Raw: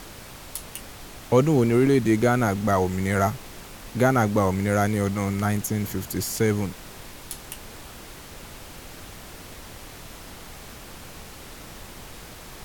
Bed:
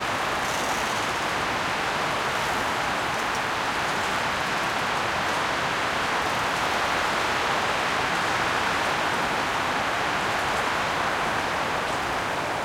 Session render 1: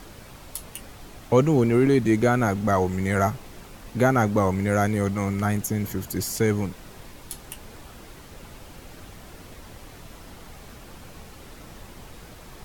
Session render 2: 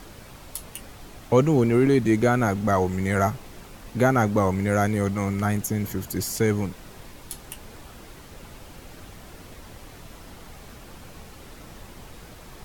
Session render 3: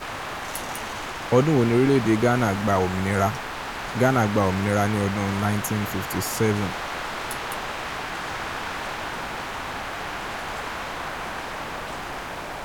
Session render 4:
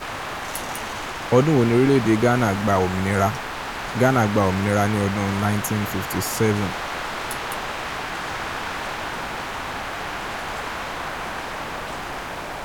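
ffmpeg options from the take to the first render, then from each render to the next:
-af "afftdn=nr=6:nf=-43"
-af anull
-filter_complex "[1:a]volume=-6.5dB[a];[0:a][a]amix=inputs=2:normalize=0"
-af "volume=2dB"

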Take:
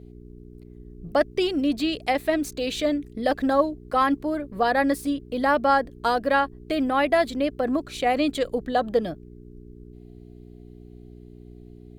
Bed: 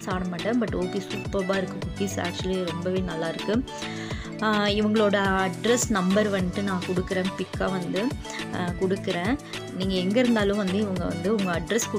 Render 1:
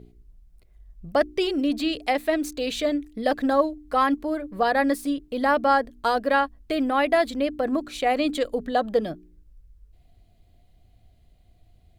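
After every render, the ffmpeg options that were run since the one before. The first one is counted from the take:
-af "bandreject=f=60:t=h:w=4,bandreject=f=120:t=h:w=4,bandreject=f=180:t=h:w=4,bandreject=f=240:t=h:w=4,bandreject=f=300:t=h:w=4,bandreject=f=360:t=h:w=4,bandreject=f=420:t=h:w=4"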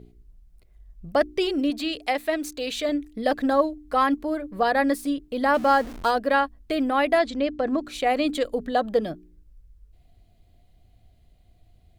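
-filter_complex "[0:a]asettb=1/sr,asplit=3[a][b][c];[a]atrim=end=1.704[d];[b]atrim=start=1.7:end=2.89,asetpts=PTS-STARTPTS,afade=t=in:d=0.004:c=qsin,afade=t=out:st=1.186:d=0.004:c=qsin,lowshelf=f=400:g=-6[e];[c]atrim=start=2.886[f];[d][e]acrossfade=d=0.004:c1=hsin:c2=qsin[g];[g][f]acrossfade=d=0.004:c1=qsin:c2=hsin,asettb=1/sr,asplit=3[h][i][j];[h]atrim=end=5.544[k];[i]atrim=start=5.54:end=6.11,asetpts=PTS-STARTPTS,afade=t=in:d=0.004:c=qsin,afade=t=out:st=0.566:d=0.004:c=qsin,aeval=exprs='val(0)+0.5*0.02*sgn(val(0))':c=same[l];[j]atrim=start=6.106[m];[k][l]acrossfade=d=0.004:c1=hsin:c2=qsin[n];[n][m]acrossfade=d=0.004:c1=qsin:c2=hsin,asettb=1/sr,asplit=3[o][p][q];[o]atrim=end=7.194[r];[p]atrim=start=7.19:end=7.84,asetpts=PTS-STARTPTS,afade=t=in:d=0.004:c=qsin,afade=t=out:st=0.646:d=0.004:c=qsin,lowpass=f=7.2k:w=0.5412,lowpass=f=7.2k:w=1.3066[s];[q]atrim=start=7.836[t];[r][s]acrossfade=d=0.004:c1=hsin:c2=qsin[u];[u][t]acrossfade=d=0.004:c1=qsin:c2=hsin"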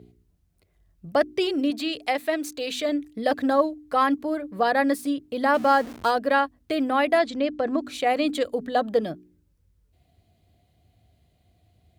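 -af "highpass=f=70:w=0.5412,highpass=f=70:w=1.3066,bandreject=f=126:t=h:w=4,bandreject=f=252:t=h:w=4"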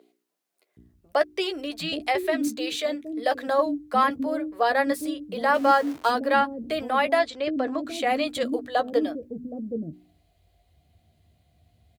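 -filter_complex "[0:a]asplit=2[a][b];[b]adelay=13,volume=-10dB[c];[a][c]amix=inputs=2:normalize=0,acrossover=split=360[d][e];[d]adelay=770[f];[f][e]amix=inputs=2:normalize=0"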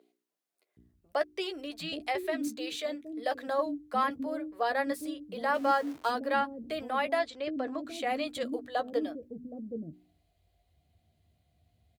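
-af "volume=-7.5dB"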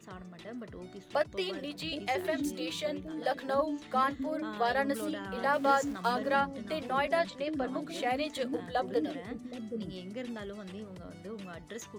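-filter_complex "[1:a]volume=-18.5dB[a];[0:a][a]amix=inputs=2:normalize=0"

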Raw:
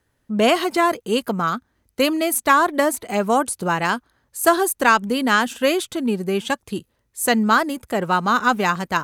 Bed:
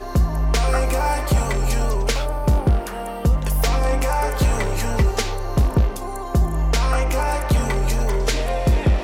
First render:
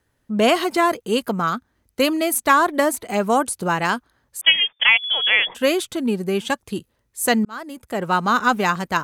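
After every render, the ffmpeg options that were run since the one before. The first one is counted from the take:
-filter_complex "[0:a]asettb=1/sr,asplit=3[a][b][c];[a]atrim=end=4.414[d];[b]atrim=start=4.41:end=5.55,asetpts=PTS-STARTPTS,afade=t=in:d=0.004:c=qsin,afade=t=out:st=1.136:d=0.004:c=qsin,lowpass=f=3.1k:t=q:w=0.5098,lowpass=f=3.1k:t=q:w=0.6013,lowpass=f=3.1k:t=q:w=0.9,lowpass=f=3.1k:t=q:w=2.563,afreqshift=-3600[e];[c]atrim=start=5.546[f];[d][e]acrossfade=d=0.004:c1=hsin:c2=qsin[g];[g][f]acrossfade=d=0.004:c1=qsin:c2=hsin,asplit=2[h][i];[h]atrim=end=7.45,asetpts=PTS-STARTPTS,afade=t=out:st=7.446:d=0.004:c=hsin[j];[i]atrim=start=7.45,asetpts=PTS-STARTPTS,afade=t=in:d=0.71[k];[j][k]concat=n=2:v=0:a=1"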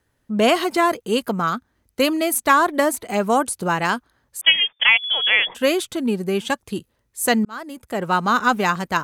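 -af anull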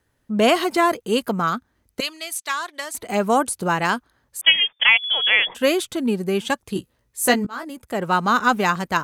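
-filter_complex "[0:a]asettb=1/sr,asplit=3[a][b][c];[a]atrim=end=2.004[d];[b]atrim=start=2:end=2.95,asetpts=PTS-STARTPTS,afade=t=in:d=0.004:c=qsin,afade=t=out:st=0.946:d=0.004:c=qsin,bandpass=f=4.6k:t=q:w=0.9[e];[c]atrim=start=2.946[f];[d][e]acrossfade=d=0.004:c1=hsin:c2=qsin[g];[g][f]acrossfade=d=0.004:c1=qsin:c2=hsin,asettb=1/sr,asplit=3[h][i][j];[h]atrim=end=6.744[k];[i]atrim=start=6.74:end=7.7,asetpts=PTS-STARTPTS,afade=t=in:d=0.004:c=qsin,afade=t=out:st=0.956:d=0.004:c=qsin,asplit=2[l][m];[m]adelay=16,volume=-5dB[n];[l][n]amix=inputs=2:normalize=0,atrim=end_sample=42336[o];[j]atrim=start=7.696[p];[k][o]acrossfade=d=0.004:c1=hsin:c2=qsin[q];[q][p]acrossfade=d=0.004:c1=qsin:c2=hsin"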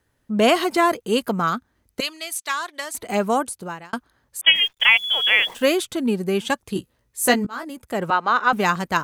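-filter_complex "[0:a]asplit=3[a][b][c];[a]afade=t=out:st=4.54:d=0.02[d];[b]acrusher=bits=8:dc=4:mix=0:aa=0.000001,afade=t=in:st=4.54:d=0.02,afade=t=out:st=5.75:d=0.02[e];[c]afade=t=in:st=5.75:d=0.02[f];[d][e][f]amix=inputs=3:normalize=0,asettb=1/sr,asplit=3[g][h][i];[g]atrim=end=8.104[j];[h]atrim=start=8.1:end=8.53,asetpts=PTS-STARTPTS,afade=t=in:d=0.004:c=qsin,afade=t=out:st=0.426:d=0.004:c=qsin,acrossover=split=360 4300:gain=0.112 1 0.112[k][l][m];[k][l][m]amix=inputs=3:normalize=0[n];[i]atrim=start=8.526[o];[j][n]acrossfade=d=0.004:c1=hsin:c2=qsin[p];[p][o]acrossfade=d=0.004:c1=qsin:c2=hsin,asplit=2[q][r];[q]atrim=end=3.93,asetpts=PTS-STARTPTS,afade=t=out:st=3.15:d=0.78[s];[r]atrim=start=3.93,asetpts=PTS-STARTPTS,afade=t=in:d=0.004:c=hsin[t];[s][t]concat=n=2:v=0:a=1"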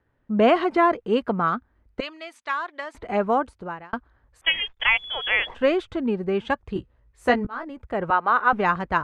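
-af "lowpass=1.9k,asubboost=boost=7:cutoff=67"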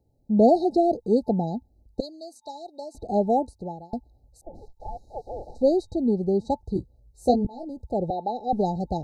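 -af "afftfilt=real='re*(1-between(b*sr/4096,880,3800))':imag='im*(1-between(b*sr/4096,880,3800))':win_size=4096:overlap=0.75,bass=f=250:g=4,treble=f=4k:g=4"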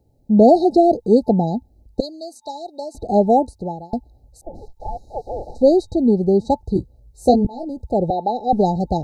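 -af "volume=7.5dB,alimiter=limit=-3dB:level=0:latency=1"

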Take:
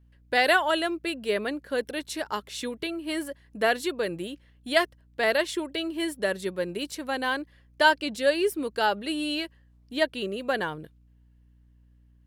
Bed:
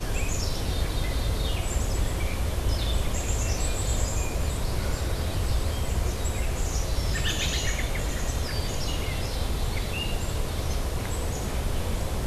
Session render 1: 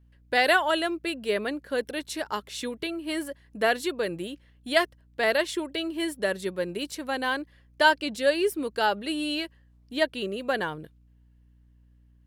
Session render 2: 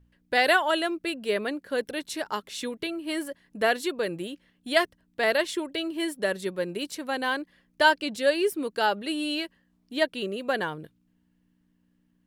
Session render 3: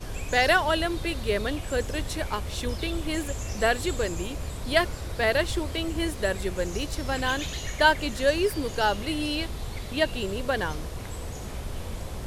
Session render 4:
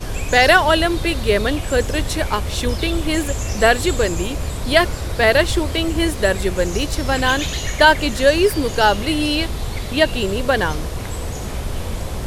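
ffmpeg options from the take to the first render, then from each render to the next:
-af anull
-af "bandreject=f=60:t=h:w=4,bandreject=f=120:t=h:w=4"
-filter_complex "[1:a]volume=-6.5dB[a];[0:a][a]amix=inputs=2:normalize=0"
-af "volume=9.5dB,alimiter=limit=-1dB:level=0:latency=1"

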